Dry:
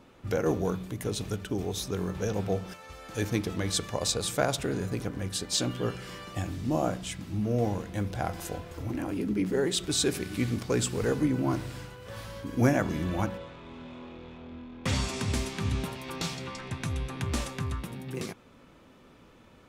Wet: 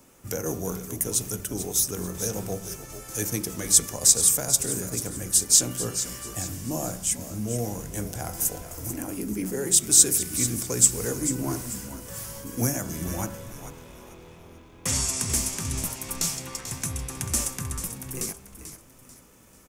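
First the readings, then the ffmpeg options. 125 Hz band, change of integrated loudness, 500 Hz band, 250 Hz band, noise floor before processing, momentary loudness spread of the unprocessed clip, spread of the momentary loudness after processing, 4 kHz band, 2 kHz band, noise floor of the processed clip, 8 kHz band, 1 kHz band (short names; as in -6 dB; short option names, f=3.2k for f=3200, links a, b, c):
-1.5 dB, +6.5 dB, -3.0 dB, -2.0 dB, -56 dBFS, 14 LU, 16 LU, +3.0 dB, -2.5 dB, -52 dBFS, +16.0 dB, -3.0 dB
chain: -filter_complex "[0:a]bandreject=f=49.3:t=h:w=4,bandreject=f=98.6:t=h:w=4,bandreject=f=147.9:t=h:w=4,bandreject=f=197.2:t=h:w=4,bandreject=f=246.5:t=h:w=4,bandreject=f=295.8:t=h:w=4,bandreject=f=345.1:t=h:w=4,bandreject=f=394.4:t=h:w=4,bandreject=f=443.7:t=h:w=4,bandreject=f=493:t=h:w=4,bandreject=f=542.3:t=h:w=4,bandreject=f=591.6:t=h:w=4,bandreject=f=640.9:t=h:w=4,bandreject=f=690.2:t=h:w=4,bandreject=f=739.5:t=h:w=4,bandreject=f=788.8:t=h:w=4,bandreject=f=838.1:t=h:w=4,bandreject=f=887.4:t=h:w=4,bandreject=f=936.7:t=h:w=4,bandreject=f=986:t=h:w=4,bandreject=f=1.0353k:t=h:w=4,bandreject=f=1.0846k:t=h:w=4,bandreject=f=1.1339k:t=h:w=4,bandreject=f=1.1832k:t=h:w=4,bandreject=f=1.2325k:t=h:w=4,bandreject=f=1.2818k:t=h:w=4,bandreject=f=1.3311k:t=h:w=4,bandreject=f=1.3804k:t=h:w=4,bandreject=f=1.4297k:t=h:w=4,bandreject=f=1.479k:t=h:w=4,bandreject=f=1.5283k:t=h:w=4,bandreject=f=1.5776k:t=h:w=4,acrossover=split=190|3700[a][b][c];[b]alimiter=limit=-20.5dB:level=0:latency=1:release=353[d];[a][d][c]amix=inputs=3:normalize=0,aexciter=amount=9.4:drive=2.8:freq=5.6k,asplit=5[e][f][g][h][i];[f]adelay=440,afreqshift=-63,volume=-11dB[j];[g]adelay=880,afreqshift=-126,volume=-19.9dB[k];[h]adelay=1320,afreqshift=-189,volume=-28.7dB[l];[i]adelay=1760,afreqshift=-252,volume=-37.6dB[m];[e][j][k][l][m]amix=inputs=5:normalize=0,volume=-1dB"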